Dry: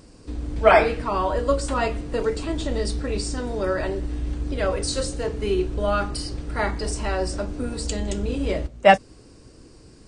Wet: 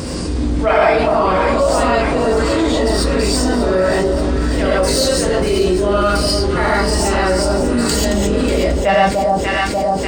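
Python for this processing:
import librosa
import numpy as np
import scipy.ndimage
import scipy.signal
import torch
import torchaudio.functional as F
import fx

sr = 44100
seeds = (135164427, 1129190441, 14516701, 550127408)

y = fx.tracing_dist(x, sr, depth_ms=0.028)
y = scipy.signal.sosfilt(scipy.signal.butter(2, 53.0, 'highpass', fs=sr, output='sos'), y)
y = fx.echo_alternate(y, sr, ms=295, hz=960.0, feedback_pct=77, wet_db=-9.0)
y = fx.rev_gated(y, sr, seeds[0], gate_ms=160, shape='rising', drr_db=-7.5)
y = fx.env_flatten(y, sr, amount_pct=70)
y = y * 10.0 ** (-8.0 / 20.0)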